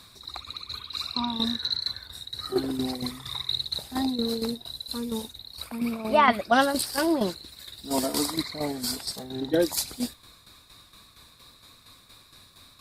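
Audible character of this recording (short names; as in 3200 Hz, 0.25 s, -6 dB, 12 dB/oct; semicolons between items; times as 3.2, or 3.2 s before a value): tremolo saw down 4.3 Hz, depth 65%; Opus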